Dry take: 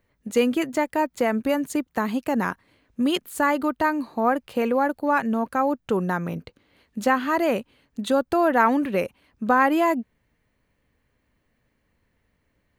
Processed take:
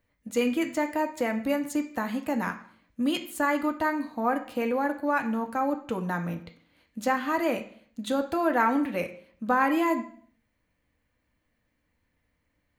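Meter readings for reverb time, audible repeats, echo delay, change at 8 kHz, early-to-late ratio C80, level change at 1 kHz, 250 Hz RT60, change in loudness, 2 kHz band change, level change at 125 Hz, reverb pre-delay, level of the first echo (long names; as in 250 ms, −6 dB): 0.55 s, no echo audible, no echo audible, −3.5 dB, 15.0 dB, −5.0 dB, 0.60 s, −4.5 dB, −4.0 dB, −4.5 dB, 3 ms, no echo audible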